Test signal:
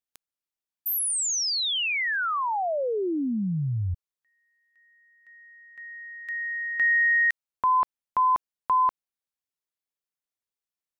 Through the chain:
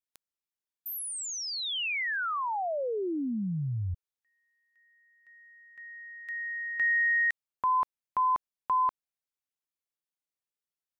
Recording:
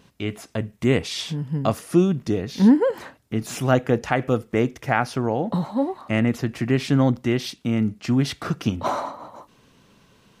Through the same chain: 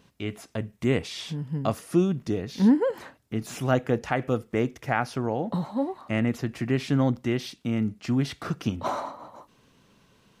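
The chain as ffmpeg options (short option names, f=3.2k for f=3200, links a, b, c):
-filter_complex "[0:a]acrossover=split=2900[a][b];[b]acompressor=threshold=-31dB:ratio=4:attack=1:release=60[c];[a][c]amix=inputs=2:normalize=0,volume=-4.5dB"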